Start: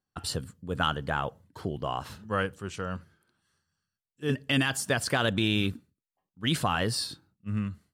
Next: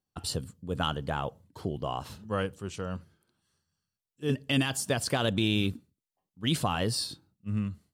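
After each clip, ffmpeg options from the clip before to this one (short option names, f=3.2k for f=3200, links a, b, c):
-af "equalizer=f=1.6k:w=1.4:g=-7"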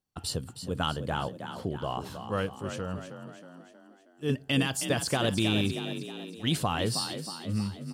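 -filter_complex "[0:a]asplit=7[a][b][c][d][e][f][g];[b]adelay=317,afreqshift=39,volume=-9dB[h];[c]adelay=634,afreqshift=78,volume=-14.8dB[i];[d]adelay=951,afreqshift=117,volume=-20.7dB[j];[e]adelay=1268,afreqshift=156,volume=-26.5dB[k];[f]adelay=1585,afreqshift=195,volume=-32.4dB[l];[g]adelay=1902,afreqshift=234,volume=-38.2dB[m];[a][h][i][j][k][l][m]amix=inputs=7:normalize=0"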